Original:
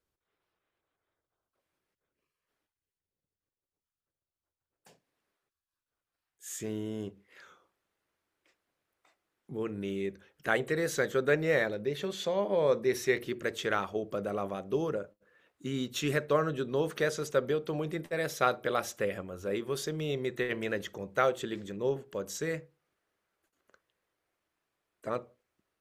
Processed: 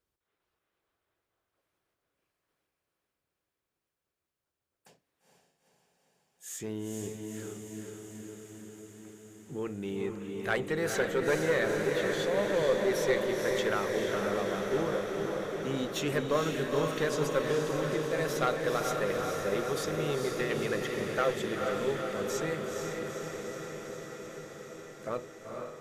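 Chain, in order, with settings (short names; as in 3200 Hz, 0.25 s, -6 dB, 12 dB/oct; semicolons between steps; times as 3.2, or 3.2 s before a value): one diode to ground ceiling -21.5 dBFS; diffused feedback echo 0.464 s, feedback 75%, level -3.5 dB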